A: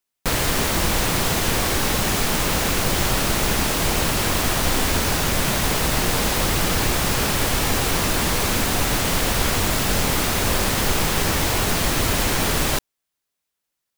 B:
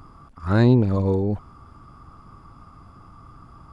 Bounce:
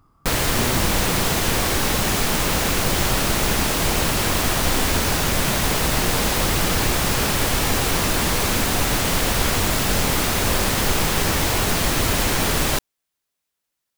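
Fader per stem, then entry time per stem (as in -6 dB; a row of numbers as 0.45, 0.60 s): +0.5, -12.5 dB; 0.00, 0.00 s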